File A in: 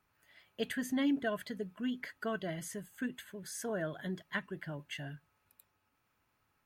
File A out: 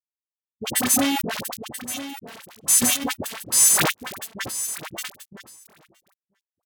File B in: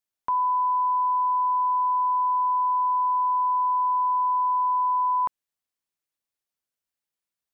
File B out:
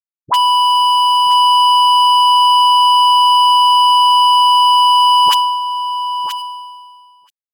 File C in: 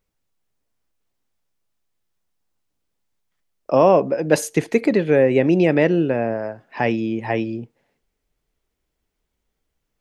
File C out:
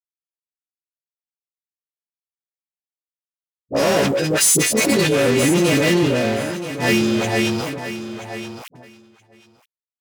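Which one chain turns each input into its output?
partials quantised in pitch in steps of 2 st; FFT filter 240 Hz 0 dB, 1.3 kHz -5 dB, 8.5 kHz +10 dB; fuzz box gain 22 dB, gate -31 dBFS; feedback delay 978 ms, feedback 18%, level -12.5 dB; gate -44 dBFS, range -19 dB; dynamic bell 920 Hz, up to -4 dB, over -29 dBFS, Q 0.8; high-pass 80 Hz 24 dB/octave; phase dispersion highs, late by 62 ms, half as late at 800 Hz; decay stretcher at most 31 dB/s; peak normalisation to -3 dBFS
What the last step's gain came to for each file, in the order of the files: +5.0 dB, +15.0 dB, +0.5 dB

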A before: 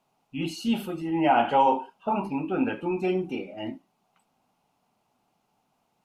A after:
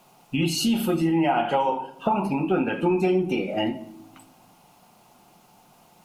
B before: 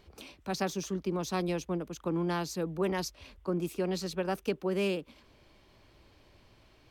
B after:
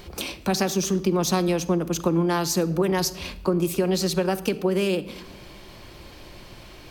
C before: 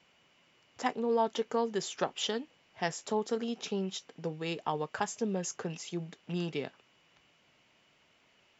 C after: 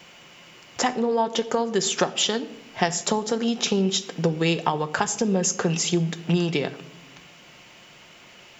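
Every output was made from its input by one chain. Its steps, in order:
treble shelf 6.9 kHz +7.5 dB; compression 6:1, threshold -37 dBFS; simulated room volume 3600 m³, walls furnished, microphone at 0.9 m; normalise loudness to -24 LUFS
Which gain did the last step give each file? +15.5 dB, +16.0 dB, +17.0 dB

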